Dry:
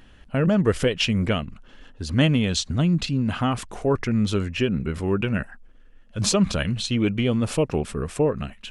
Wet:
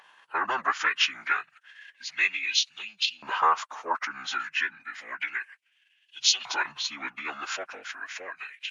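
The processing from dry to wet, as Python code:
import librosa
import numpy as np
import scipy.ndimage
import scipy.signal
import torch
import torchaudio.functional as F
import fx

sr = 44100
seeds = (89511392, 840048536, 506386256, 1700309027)

y = fx.pitch_keep_formants(x, sr, semitones=-8.5)
y = fx.filter_lfo_highpass(y, sr, shape='saw_up', hz=0.31, low_hz=920.0, high_hz=3300.0, q=3.5)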